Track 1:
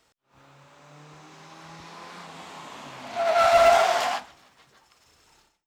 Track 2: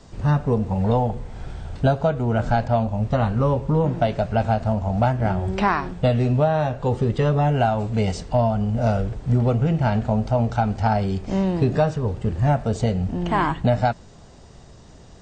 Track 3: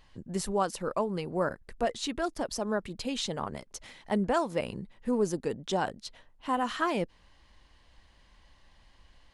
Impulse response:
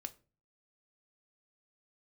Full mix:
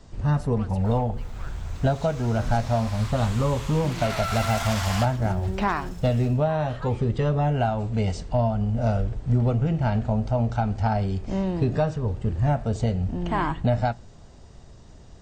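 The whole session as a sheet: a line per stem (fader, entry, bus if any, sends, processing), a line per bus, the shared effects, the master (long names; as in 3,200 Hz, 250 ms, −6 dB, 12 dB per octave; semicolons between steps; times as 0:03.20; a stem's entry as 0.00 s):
+2.0 dB, 0.85 s, bus A, no send, high-shelf EQ 6,300 Hz +11.5 dB
−7.0 dB, 0.00 s, no bus, send −6.5 dB, no processing
−7.0 dB, 0.00 s, bus A, no send, high-shelf EQ 4,200 Hz −9 dB; soft clipping −25 dBFS, distortion −13 dB
bus A: 0.0 dB, inverse Chebyshev high-pass filter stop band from 350 Hz, stop band 50 dB; brickwall limiter −21.5 dBFS, peak gain reduction 12.5 dB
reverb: on, RT60 0.35 s, pre-delay 3 ms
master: low-shelf EQ 100 Hz +7 dB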